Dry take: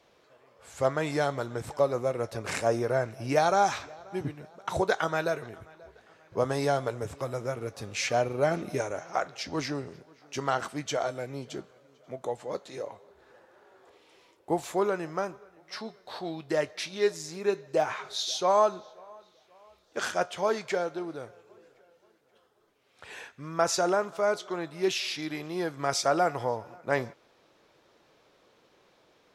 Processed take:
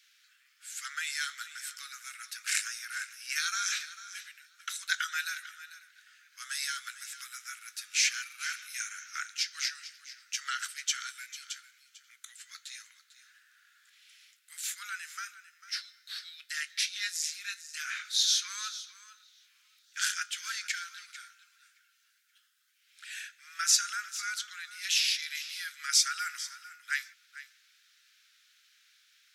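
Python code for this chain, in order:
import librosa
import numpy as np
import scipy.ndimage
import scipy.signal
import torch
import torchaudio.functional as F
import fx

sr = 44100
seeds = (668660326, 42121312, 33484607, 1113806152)

p1 = scipy.signal.sosfilt(scipy.signal.butter(12, 1400.0, 'highpass', fs=sr, output='sos'), x)
p2 = fx.high_shelf(p1, sr, hz=3900.0, db=10.5)
y = p2 + fx.echo_single(p2, sr, ms=447, db=-15.0, dry=0)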